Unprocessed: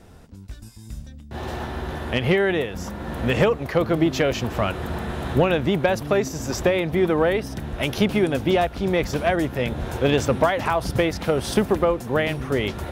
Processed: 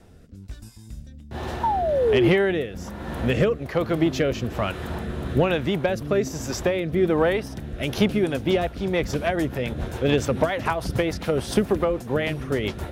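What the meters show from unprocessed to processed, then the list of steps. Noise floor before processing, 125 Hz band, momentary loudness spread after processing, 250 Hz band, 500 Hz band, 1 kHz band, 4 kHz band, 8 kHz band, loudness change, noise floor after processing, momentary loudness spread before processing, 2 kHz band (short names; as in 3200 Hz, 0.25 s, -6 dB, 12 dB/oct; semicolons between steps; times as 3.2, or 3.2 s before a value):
-41 dBFS, -1.0 dB, 13 LU, -1.0 dB, -1.0 dB, -2.0 dB, -2.0 dB, -2.0 dB, -1.0 dB, -43 dBFS, 12 LU, -2.5 dB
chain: painted sound fall, 1.63–2.29, 320–960 Hz -17 dBFS; rotary speaker horn 1.2 Hz, later 7 Hz, at 7.79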